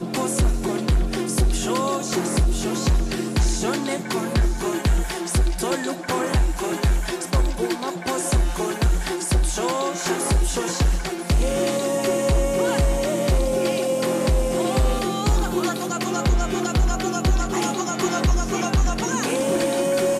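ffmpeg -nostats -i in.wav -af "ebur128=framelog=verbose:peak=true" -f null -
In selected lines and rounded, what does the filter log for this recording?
Integrated loudness:
  I:         -22.7 LUFS
  Threshold: -32.6 LUFS
Loudness range:
  LRA:         1.9 LU
  Threshold: -42.7 LUFS
  LRA low:   -23.5 LUFS
  LRA high:  -21.6 LUFS
True peak:
  Peak:      -12.4 dBFS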